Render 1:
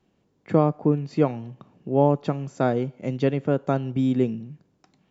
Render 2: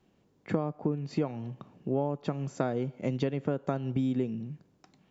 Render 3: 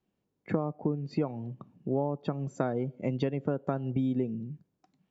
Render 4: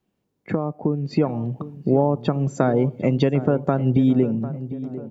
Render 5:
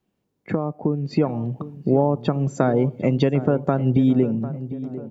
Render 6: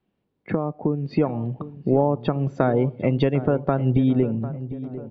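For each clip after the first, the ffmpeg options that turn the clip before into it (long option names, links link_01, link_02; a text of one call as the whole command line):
ffmpeg -i in.wav -af "acompressor=threshold=-25dB:ratio=10" out.wav
ffmpeg -i in.wav -af "afftdn=noise_reduction=13:noise_floor=-47" out.wav
ffmpeg -i in.wav -filter_complex "[0:a]dynaudnorm=framelen=410:gausssize=5:maxgain=7.5dB,asplit=2[link_01][link_02];[link_02]alimiter=limit=-16dB:level=0:latency=1:release=179,volume=-1dB[link_03];[link_01][link_03]amix=inputs=2:normalize=0,asplit=2[link_04][link_05];[link_05]adelay=749,lowpass=frequency=1300:poles=1,volume=-13.5dB,asplit=2[link_06][link_07];[link_07]adelay=749,lowpass=frequency=1300:poles=1,volume=0.54,asplit=2[link_08][link_09];[link_09]adelay=749,lowpass=frequency=1300:poles=1,volume=0.54,asplit=2[link_10][link_11];[link_11]adelay=749,lowpass=frequency=1300:poles=1,volume=0.54,asplit=2[link_12][link_13];[link_13]adelay=749,lowpass=frequency=1300:poles=1,volume=0.54[link_14];[link_04][link_06][link_08][link_10][link_12][link_14]amix=inputs=6:normalize=0" out.wav
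ffmpeg -i in.wav -af anull out.wav
ffmpeg -i in.wav -af "lowpass=frequency=4000:width=0.5412,lowpass=frequency=4000:width=1.3066,asubboost=boost=5.5:cutoff=73" out.wav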